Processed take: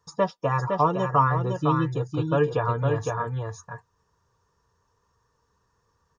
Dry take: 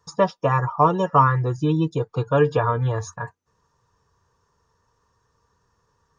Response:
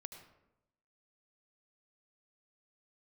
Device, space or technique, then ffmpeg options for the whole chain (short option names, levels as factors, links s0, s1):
ducked delay: -filter_complex "[0:a]asplit=3[s0][s1][s2];[s1]adelay=509,volume=0.708[s3];[s2]apad=whole_len=295171[s4];[s3][s4]sidechaincompress=threshold=0.126:ratio=8:attack=48:release=631[s5];[s0][s5]amix=inputs=2:normalize=0,volume=0.596"